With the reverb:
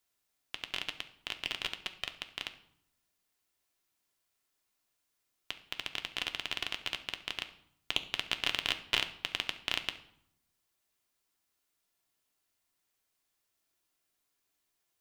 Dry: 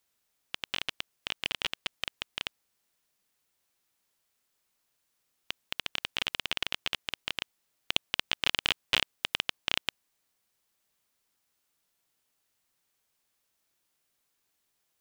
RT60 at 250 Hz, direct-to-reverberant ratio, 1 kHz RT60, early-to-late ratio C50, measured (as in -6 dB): 1.1 s, 6.5 dB, 0.70 s, 13.0 dB